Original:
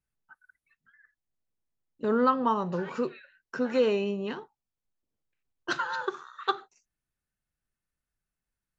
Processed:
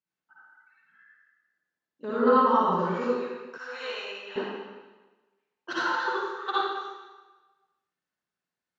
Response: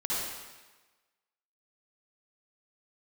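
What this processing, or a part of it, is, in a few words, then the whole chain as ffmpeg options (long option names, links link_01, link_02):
supermarket ceiling speaker: -filter_complex "[0:a]highpass=220,lowpass=5600[link_01];[1:a]atrim=start_sample=2205[link_02];[link_01][link_02]afir=irnorm=-1:irlink=0,asettb=1/sr,asplit=3[link_03][link_04][link_05];[link_03]atrim=end=3.584[link_06];[link_04]atrim=start=3.58:end=4.36,asetpts=PTS-STARTPTS,afade=type=in:duration=0.004:curve=qsin,afade=type=out:start_time=0.776:duration=0.004:curve=qsin,highpass=1300[link_07];[link_05]atrim=start=4.356[link_08];[link_06][link_07]acrossfade=duration=0.004:curve1=hsin:curve2=qsin[link_09];[link_09][link_08]acrossfade=duration=0.004:curve1=qsin:curve2=hsin,volume=-3.5dB"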